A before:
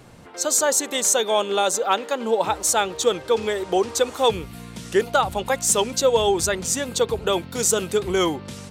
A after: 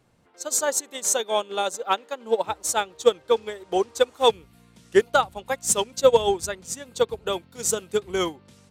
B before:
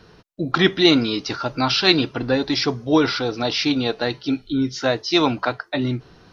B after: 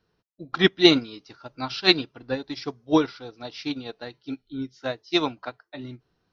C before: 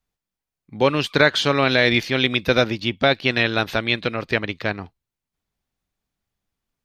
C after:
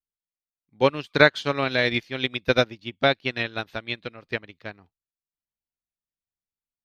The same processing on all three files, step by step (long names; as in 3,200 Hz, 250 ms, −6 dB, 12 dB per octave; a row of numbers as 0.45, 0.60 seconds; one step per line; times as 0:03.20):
expander for the loud parts 2.5 to 1, over −27 dBFS
loudness normalisation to −24 LKFS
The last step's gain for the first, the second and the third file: +3.5, +1.0, +1.5 decibels